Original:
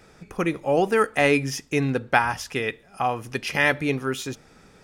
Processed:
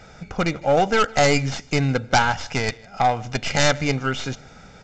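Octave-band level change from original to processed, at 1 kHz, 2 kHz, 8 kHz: +4.0, +0.5, +7.5 dB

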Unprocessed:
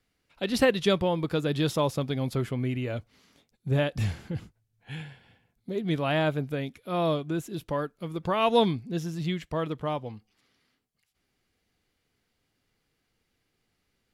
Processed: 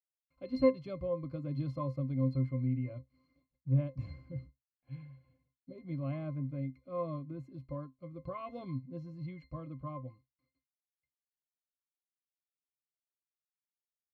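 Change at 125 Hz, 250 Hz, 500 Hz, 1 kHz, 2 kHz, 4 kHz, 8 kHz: -4.5 dB, -8.0 dB, -10.5 dB, -15.5 dB, -21.0 dB, under -25 dB, under -30 dB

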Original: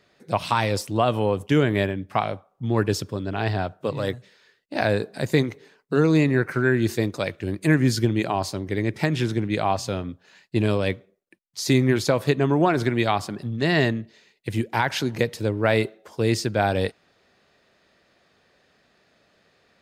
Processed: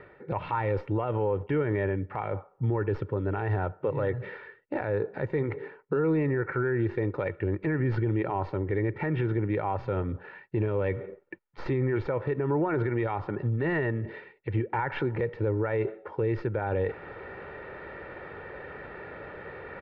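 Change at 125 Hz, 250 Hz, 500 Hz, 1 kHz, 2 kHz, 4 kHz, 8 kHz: -4.5 dB, -7.5 dB, -4.5 dB, -7.0 dB, -8.0 dB, under -20 dB, under -40 dB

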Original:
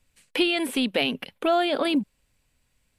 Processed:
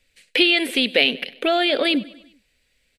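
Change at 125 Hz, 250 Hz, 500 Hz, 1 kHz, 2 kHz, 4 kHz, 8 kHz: n/a, +1.5 dB, +3.5 dB, +0.5 dB, +9.0 dB, +9.0 dB, +1.5 dB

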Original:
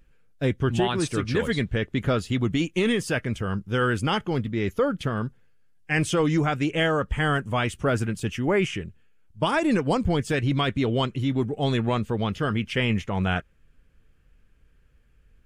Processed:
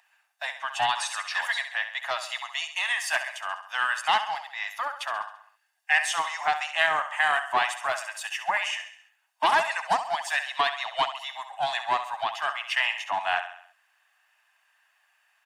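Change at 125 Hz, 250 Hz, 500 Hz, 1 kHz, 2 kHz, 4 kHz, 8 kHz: under -30 dB, -28.5 dB, -10.0 dB, +4.5 dB, +4.0 dB, +2.0 dB, +2.5 dB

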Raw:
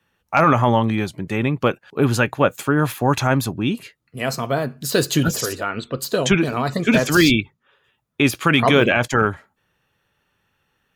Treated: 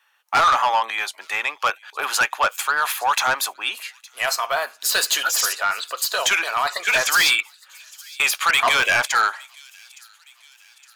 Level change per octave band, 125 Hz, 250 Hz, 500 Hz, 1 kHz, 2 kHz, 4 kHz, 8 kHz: under -25 dB, -27.0 dB, -10.0 dB, +2.0 dB, +3.0 dB, +4.0 dB, +5.5 dB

